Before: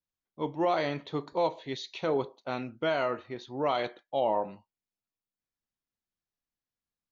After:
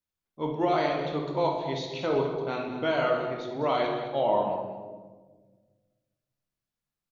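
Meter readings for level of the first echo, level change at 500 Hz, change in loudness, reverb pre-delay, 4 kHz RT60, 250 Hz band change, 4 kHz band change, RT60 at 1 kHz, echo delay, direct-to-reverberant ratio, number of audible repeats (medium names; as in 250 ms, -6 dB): -11.0 dB, +3.5 dB, +3.0 dB, 19 ms, 0.85 s, +4.0 dB, +2.0 dB, 1.2 s, 208 ms, 0.5 dB, 1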